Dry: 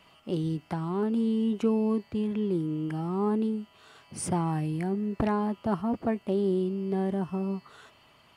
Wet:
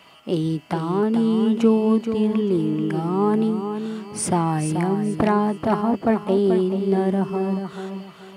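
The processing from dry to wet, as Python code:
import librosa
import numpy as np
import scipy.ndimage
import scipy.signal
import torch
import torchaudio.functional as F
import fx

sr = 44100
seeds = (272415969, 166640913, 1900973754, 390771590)

p1 = fx.highpass(x, sr, hz=180.0, slope=6)
p2 = p1 + fx.echo_feedback(p1, sr, ms=433, feedback_pct=28, wet_db=-8.0, dry=0)
y = F.gain(torch.from_numpy(p2), 9.0).numpy()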